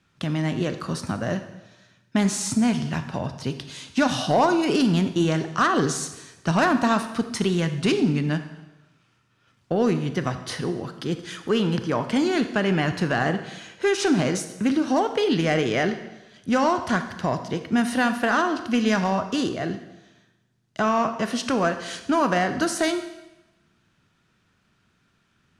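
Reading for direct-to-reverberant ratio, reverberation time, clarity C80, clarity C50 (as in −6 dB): 8.5 dB, 1.0 s, 12.0 dB, 10.0 dB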